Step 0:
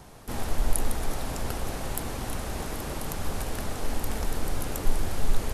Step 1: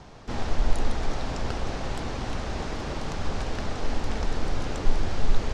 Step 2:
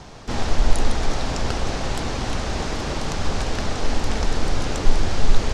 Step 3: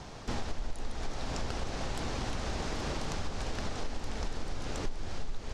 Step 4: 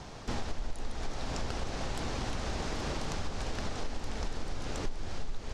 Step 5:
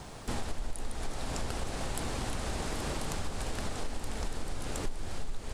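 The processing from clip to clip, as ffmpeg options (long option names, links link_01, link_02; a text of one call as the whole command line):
ffmpeg -i in.wav -af "lowpass=frequency=6000:width=0.5412,lowpass=frequency=6000:width=1.3066,volume=2dB" out.wav
ffmpeg -i in.wav -af "highshelf=frequency=4300:gain=7,volume=5.5dB" out.wav
ffmpeg -i in.wav -af "acompressor=threshold=-26dB:ratio=5,volume=-4.5dB" out.wav
ffmpeg -i in.wav -af anull out.wav
ffmpeg -i in.wav -af "aexciter=amount=4.4:drive=6.3:freq=8100" out.wav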